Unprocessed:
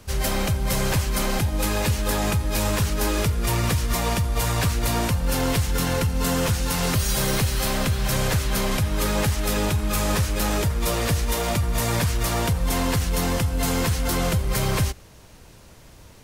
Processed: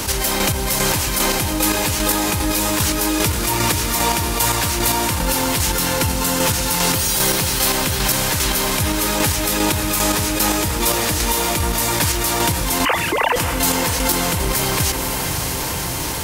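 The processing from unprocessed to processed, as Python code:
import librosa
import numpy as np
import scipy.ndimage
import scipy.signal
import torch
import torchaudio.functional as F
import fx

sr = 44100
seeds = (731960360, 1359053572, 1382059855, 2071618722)

y = fx.sine_speech(x, sr, at=(12.85, 13.36))
y = fx.tilt_eq(y, sr, slope=2.0)
y = fx.small_body(y, sr, hz=(310.0, 900.0), ring_ms=45, db=9)
y = fx.chopper(y, sr, hz=2.5, depth_pct=60, duty_pct=30)
y = fx.echo_diffused(y, sr, ms=551, feedback_pct=58, wet_db=-14)
y = fx.env_flatten(y, sr, amount_pct=70)
y = F.gain(torch.from_numpy(y), 3.0).numpy()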